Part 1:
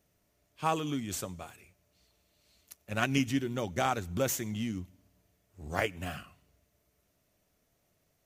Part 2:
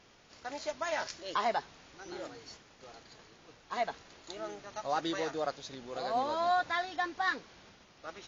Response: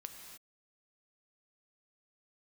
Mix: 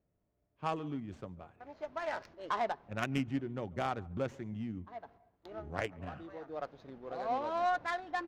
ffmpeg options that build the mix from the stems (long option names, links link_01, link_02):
-filter_complex "[0:a]volume=-5.5dB,asplit=4[link_01][link_02][link_03][link_04];[link_02]volume=-19.5dB[link_05];[link_03]volume=-21.5dB[link_06];[1:a]agate=range=-18dB:threshold=-47dB:ratio=16:detection=peak,adelay=1150,volume=-2.5dB,asplit=2[link_07][link_08];[link_08]volume=-18dB[link_09];[link_04]apad=whole_len=415601[link_10];[link_07][link_10]sidechaincompress=threshold=-55dB:ratio=6:attack=27:release=539[link_11];[2:a]atrim=start_sample=2205[link_12];[link_05][link_09]amix=inputs=2:normalize=0[link_13];[link_13][link_12]afir=irnorm=-1:irlink=0[link_14];[link_06]aecho=0:1:141:1[link_15];[link_01][link_11][link_14][link_15]amix=inputs=4:normalize=0,adynamicsmooth=sensitivity=3.5:basefreq=1200"